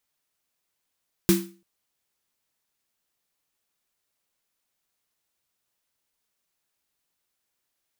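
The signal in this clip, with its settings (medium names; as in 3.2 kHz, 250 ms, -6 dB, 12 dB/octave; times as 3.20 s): snare drum length 0.34 s, tones 190 Hz, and 340 Hz, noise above 980 Hz, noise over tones -7 dB, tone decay 0.37 s, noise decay 0.33 s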